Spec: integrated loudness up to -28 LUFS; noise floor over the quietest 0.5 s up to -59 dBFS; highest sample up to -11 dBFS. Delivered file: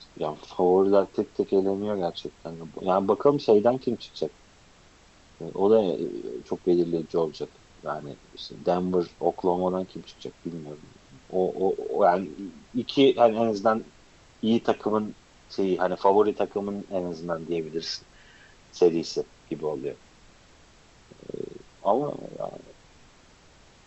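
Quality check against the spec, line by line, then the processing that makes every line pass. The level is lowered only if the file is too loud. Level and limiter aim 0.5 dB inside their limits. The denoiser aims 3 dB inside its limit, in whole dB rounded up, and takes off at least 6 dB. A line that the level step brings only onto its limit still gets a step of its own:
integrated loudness -26.0 LUFS: fail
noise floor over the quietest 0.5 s -55 dBFS: fail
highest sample -7.0 dBFS: fail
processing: noise reduction 6 dB, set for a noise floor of -55 dBFS; trim -2.5 dB; peak limiter -11.5 dBFS

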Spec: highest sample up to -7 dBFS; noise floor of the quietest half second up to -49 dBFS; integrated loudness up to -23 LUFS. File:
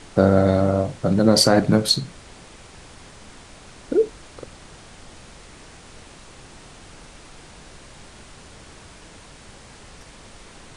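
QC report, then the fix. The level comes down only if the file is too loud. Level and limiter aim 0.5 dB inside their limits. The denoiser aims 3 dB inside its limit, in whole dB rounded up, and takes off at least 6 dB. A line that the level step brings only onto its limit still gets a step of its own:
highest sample -3.0 dBFS: fail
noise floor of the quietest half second -44 dBFS: fail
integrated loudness -18.5 LUFS: fail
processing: noise reduction 6 dB, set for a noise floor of -44 dBFS; trim -5 dB

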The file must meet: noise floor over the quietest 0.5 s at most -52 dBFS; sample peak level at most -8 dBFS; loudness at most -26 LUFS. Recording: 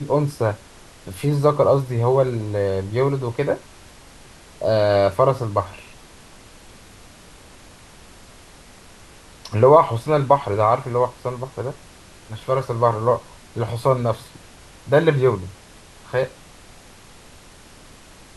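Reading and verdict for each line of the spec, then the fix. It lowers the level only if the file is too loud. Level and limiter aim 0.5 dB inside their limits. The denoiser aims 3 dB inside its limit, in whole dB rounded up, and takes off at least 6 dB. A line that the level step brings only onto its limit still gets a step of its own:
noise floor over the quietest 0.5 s -45 dBFS: fail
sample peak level -1.5 dBFS: fail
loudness -20.5 LUFS: fail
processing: noise reduction 6 dB, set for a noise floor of -45 dBFS; trim -6 dB; peak limiter -8.5 dBFS

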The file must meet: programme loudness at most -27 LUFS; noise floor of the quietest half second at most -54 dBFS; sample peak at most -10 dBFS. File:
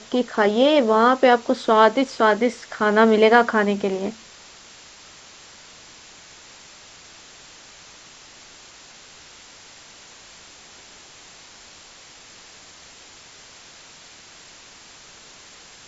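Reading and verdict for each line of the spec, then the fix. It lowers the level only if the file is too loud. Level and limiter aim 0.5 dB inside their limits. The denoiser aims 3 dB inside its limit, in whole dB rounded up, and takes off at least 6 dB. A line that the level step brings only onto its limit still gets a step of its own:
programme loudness -18.0 LUFS: fail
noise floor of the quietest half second -46 dBFS: fail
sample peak -3.0 dBFS: fail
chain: trim -9.5 dB

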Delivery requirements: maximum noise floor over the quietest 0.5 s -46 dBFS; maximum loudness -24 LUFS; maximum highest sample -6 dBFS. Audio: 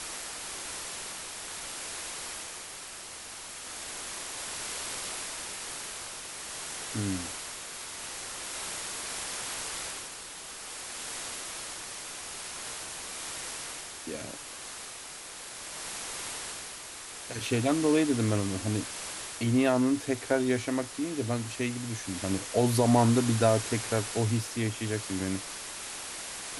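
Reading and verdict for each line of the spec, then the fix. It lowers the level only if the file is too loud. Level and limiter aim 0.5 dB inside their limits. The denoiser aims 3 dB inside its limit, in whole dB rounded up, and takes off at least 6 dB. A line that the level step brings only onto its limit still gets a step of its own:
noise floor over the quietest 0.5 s -43 dBFS: fail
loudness -32.0 LUFS: pass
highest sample -11.5 dBFS: pass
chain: noise reduction 6 dB, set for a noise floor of -43 dBFS

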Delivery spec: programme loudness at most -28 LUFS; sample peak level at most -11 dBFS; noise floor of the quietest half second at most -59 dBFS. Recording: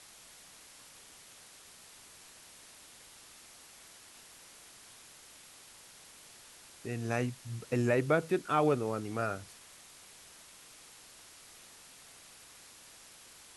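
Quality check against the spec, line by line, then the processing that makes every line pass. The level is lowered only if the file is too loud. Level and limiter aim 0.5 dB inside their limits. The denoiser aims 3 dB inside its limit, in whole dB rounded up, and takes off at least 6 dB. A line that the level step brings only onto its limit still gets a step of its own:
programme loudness -32.5 LUFS: pass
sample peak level -15.0 dBFS: pass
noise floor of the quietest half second -55 dBFS: fail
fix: noise reduction 7 dB, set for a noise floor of -55 dBFS

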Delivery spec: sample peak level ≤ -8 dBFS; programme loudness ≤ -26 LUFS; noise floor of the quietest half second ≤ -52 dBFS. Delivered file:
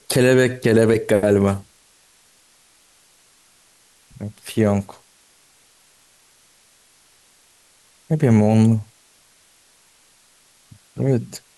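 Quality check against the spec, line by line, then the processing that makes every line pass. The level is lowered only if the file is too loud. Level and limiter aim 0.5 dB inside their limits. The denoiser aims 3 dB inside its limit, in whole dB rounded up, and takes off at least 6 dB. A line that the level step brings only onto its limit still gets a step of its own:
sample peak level -4.5 dBFS: fail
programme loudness -18.0 LUFS: fail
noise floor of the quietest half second -56 dBFS: pass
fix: trim -8.5 dB

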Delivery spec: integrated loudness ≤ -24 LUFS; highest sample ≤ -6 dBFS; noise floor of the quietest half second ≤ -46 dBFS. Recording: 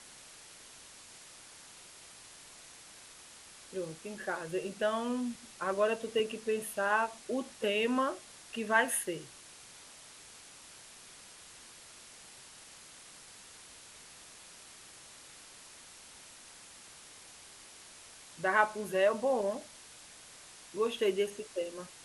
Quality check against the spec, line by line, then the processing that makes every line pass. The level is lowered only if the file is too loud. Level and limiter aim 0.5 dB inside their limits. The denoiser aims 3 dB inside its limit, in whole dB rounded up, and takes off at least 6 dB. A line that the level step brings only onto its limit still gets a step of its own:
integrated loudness -33.0 LUFS: pass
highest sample -11.0 dBFS: pass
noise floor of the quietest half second -54 dBFS: pass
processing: none needed

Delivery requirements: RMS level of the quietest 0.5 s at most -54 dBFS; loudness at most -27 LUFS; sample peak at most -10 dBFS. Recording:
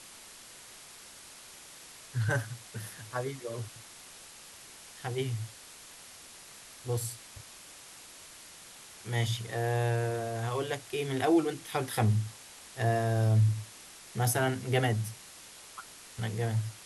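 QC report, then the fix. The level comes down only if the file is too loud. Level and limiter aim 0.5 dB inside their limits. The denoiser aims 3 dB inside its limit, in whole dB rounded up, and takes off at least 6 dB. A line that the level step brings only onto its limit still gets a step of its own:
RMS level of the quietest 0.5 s -51 dBFS: fail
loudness -31.5 LUFS: pass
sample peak -15.0 dBFS: pass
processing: noise reduction 6 dB, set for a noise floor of -51 dBFS

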